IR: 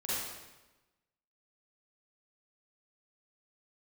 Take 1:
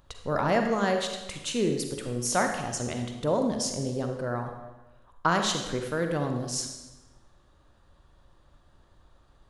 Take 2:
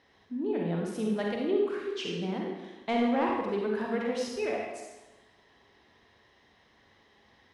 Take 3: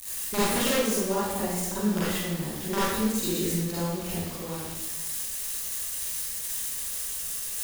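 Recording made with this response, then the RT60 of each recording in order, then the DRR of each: 3; 1.1 s, 1.1 s, 1.1 s; 4.0 dB, -1.5 dB, -10.5 dB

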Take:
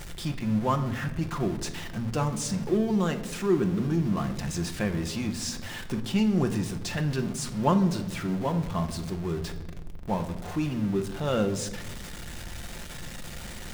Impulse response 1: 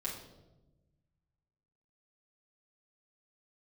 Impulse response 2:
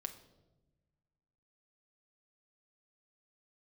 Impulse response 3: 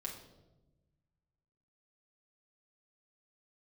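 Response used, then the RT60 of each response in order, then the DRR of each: 2; 1.1 s, 1.1 s, 1.1 s; -6.0 dB, 6.0 dB, -2.0 dB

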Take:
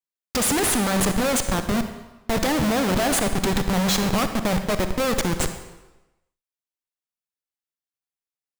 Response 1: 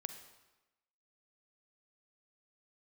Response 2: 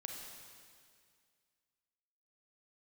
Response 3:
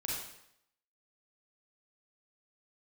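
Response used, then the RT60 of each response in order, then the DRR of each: 1; 1.0 s, 2.1 s, 0.75 s; 8.0 dB, 1.0 dB, -4.5 dB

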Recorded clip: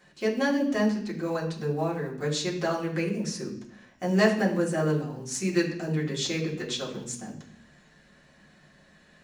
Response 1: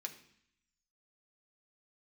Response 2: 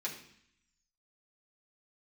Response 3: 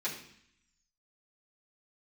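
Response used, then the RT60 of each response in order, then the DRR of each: 2; 0.65 s, 0.65 s, 0.65 s; 2.5 dB, -5.5 dB, -9.5 dB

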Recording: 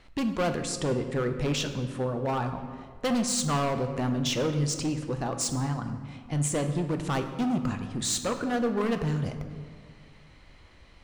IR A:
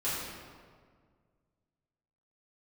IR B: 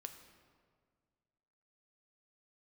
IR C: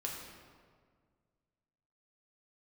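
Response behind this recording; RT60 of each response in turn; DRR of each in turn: B; 1.8 s, 1.9 s, 1.8 s; -12.0 dB, 6.0 dB, -2.0 dB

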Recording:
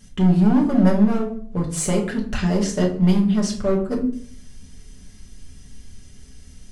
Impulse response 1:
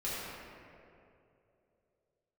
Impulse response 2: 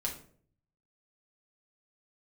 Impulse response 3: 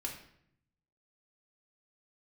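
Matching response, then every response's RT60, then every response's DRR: 2; 2.8 s, 0.55 s, 0.70 s; -10.0 dB, -2.0 dB, -1.0 dB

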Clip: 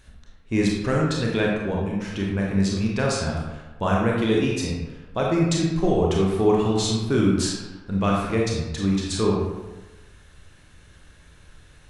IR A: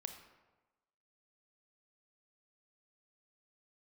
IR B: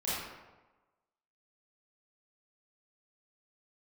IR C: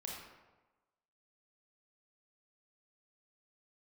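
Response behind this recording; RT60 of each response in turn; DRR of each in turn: C; 1.2 s, 1.2 s, 1.2 s; 6.5 dB, -10.5 dB, -2.5 dB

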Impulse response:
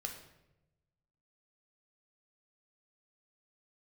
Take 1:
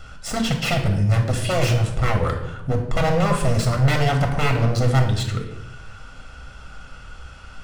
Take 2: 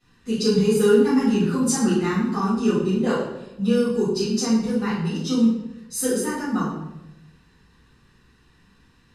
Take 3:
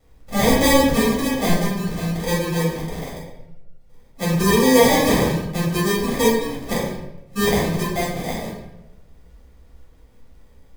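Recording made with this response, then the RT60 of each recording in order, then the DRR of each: 1; 0.95 s, 0.95 s, 0.95 s; 3.0 dB, -15.0 dB, -6.5 dB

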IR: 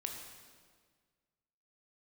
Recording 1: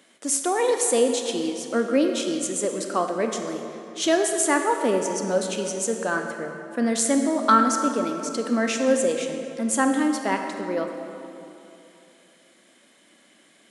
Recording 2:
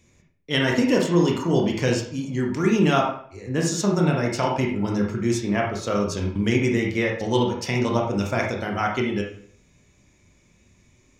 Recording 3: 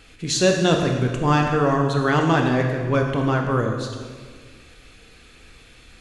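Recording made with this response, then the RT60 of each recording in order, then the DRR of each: 3; 2.9 s, 0.55 s, 1.7 s; 4.0 dB, -1.0 dB, 2.0 dB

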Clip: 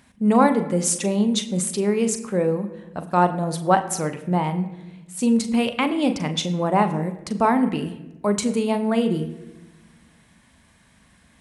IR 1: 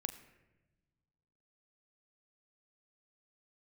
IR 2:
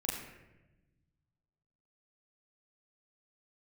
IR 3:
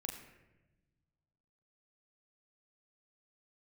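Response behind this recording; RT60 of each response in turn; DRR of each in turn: 1; 1.1 s, 1.0 s, 1.0 s; 8.0 dB, -5.5 dB, 0.5 dB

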